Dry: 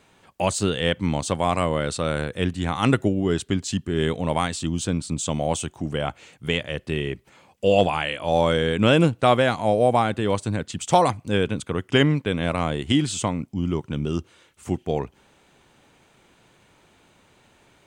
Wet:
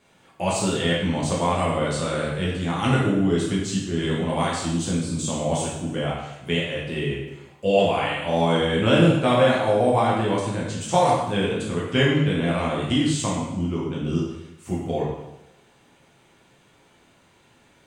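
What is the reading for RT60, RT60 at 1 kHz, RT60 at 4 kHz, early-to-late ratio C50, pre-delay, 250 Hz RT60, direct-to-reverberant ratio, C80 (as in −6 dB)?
0.95 s, 0.95 s, 0.90 s, 1.5 dB, 4 ms, 0.90 s, −6.0 dB, 4.0 dB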